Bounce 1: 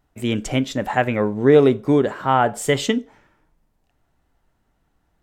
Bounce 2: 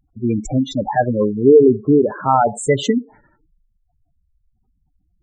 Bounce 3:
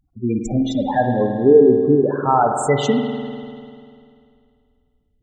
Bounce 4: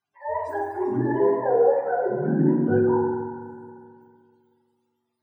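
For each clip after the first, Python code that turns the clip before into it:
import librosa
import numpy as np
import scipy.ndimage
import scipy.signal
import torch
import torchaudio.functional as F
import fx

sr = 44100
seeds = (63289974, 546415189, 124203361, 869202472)

y1 = fx.spec_gate(x, sr, threshold_db=-10, keep='strong')
y1 = y1 * librosa.db_to_amplitude(4.0)
y2 = fx.rev_spring(y1, sr, rt60_s=2.3, pass_ms=(49,), chirp_ms=60, drr_db=4.0)
y2 = y2 * librosa.db_to_amplitude(-2.0)
y3 = fx.octave_mirror(y2, sr, pivot_hz=460.0)
y3 = fx.peak_eq(y3, sr, hz=7600.0, db=-14.0, octaves=3.0)
y3 = fx.rev_fdn(y3, sr, rt60_s=1.1, lf_ratio=1.55, hf_ratio=0.4, size_ms=15.0, drr_db=-2.5)
y3 = y3 * librosa.db_to_amplitude(-7.5)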